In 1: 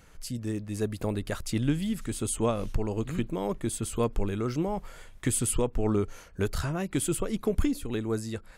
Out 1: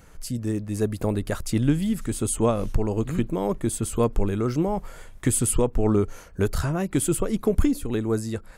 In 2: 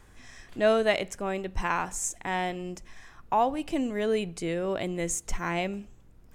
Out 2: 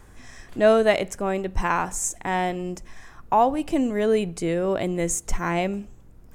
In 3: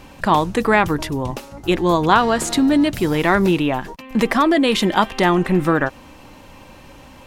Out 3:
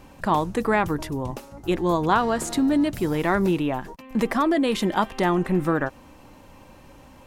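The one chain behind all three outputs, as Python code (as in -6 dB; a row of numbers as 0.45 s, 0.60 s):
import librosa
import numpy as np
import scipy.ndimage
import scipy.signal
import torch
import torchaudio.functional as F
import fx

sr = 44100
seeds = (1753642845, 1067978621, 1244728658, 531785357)

y = fx.peak_eq(x, sr, hz=3200.0, db=-5.0, octaves=1.9)
y = y * 10.0 ** (-24 / 20.0) / np.sqrt(np.mean(np.square(y)))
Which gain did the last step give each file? +5.5 dB, +6.0 dB, -5.0 dB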